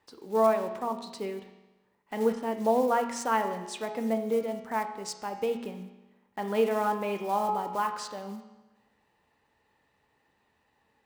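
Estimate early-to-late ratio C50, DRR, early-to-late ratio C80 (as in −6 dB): 8.0 dB, 5.5 dB, 10.0 dB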